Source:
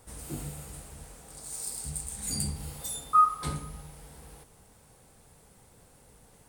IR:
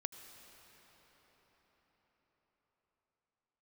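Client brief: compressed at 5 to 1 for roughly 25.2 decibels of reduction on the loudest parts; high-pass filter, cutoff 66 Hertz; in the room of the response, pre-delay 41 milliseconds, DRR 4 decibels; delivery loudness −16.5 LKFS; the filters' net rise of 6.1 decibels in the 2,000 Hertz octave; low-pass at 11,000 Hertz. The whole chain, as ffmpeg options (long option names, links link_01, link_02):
-filter_complex "[0:a]highpass=66,lowpass=11000,equalizer=frequency=2000:width_type=o:gain=7.5,acompressor=threshold=-44dB:ratio=5,asplit=2[link_01][link_02];[1:a]atrim=start_sample=2205,adelay=41[link_03];[link_02][link_03]afir=irnorm=-1:irlink=0,volume=-2dB[link_04];[link_01][link_04]amix=inputs=2:normalize=0,volume=28dB"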